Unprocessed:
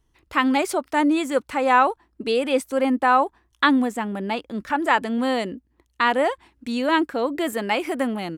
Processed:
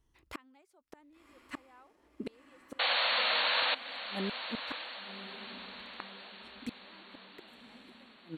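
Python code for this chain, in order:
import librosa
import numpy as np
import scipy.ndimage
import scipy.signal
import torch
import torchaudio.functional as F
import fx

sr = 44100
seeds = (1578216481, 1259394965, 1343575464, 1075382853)

y = fx.gate_flip(x, sr, shuts_db=-20.0, range_db=-36)
y = fx.spec_paint(y, sr, seeds[0], shape='noise', start_s=2.79, length_s=0.96, low_hz=470.0, high_hz=4500.0, level_db=-23.0)
y = fx.echo_diffused(y, sr, ms=1104, feedback_pct=51, wet_db=-11)
y = F.gain(torch.from_numpy(y), -6.5).numpy()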